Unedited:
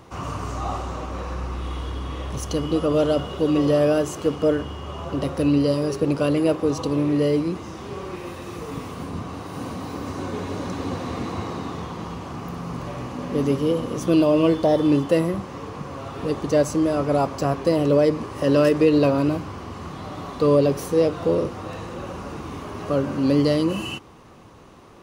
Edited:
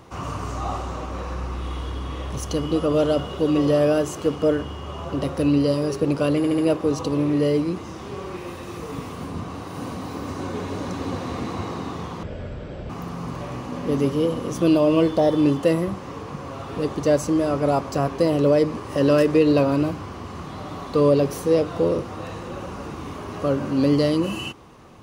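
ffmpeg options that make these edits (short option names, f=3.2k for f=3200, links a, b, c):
-filter_complex "[0:a]asplit=6[a][b][c][d][e][f];[a]atrim=end=6.442[g];[b]atrim=start=6.368:end=6.442[h];[c]atrim=start=6.368:end=6.442[i];[d]atrim=start=6.368:end=12.024[j];[e]atrim=start=12.02:end=12.36,asetpts=PTS-STARTPTS,asetrate=22491,aresample=44100[k];[f]atrim=start=12.356[l];[g][h]acrossfade=d=0.004:c1=hsin:c2=hsin[m];[m][i]acrossfade=d=0.004:c1=hsin:c2=hsin[n];[n][j]acrossfade=d=0.004:c1=hsin:c2=hsin[o];[o][k]acrossfade=d=0.004:c1=hsin:c2=hsin[p];[p][l]acrossfade=d=0.004:c1=hsin:c2=hsin"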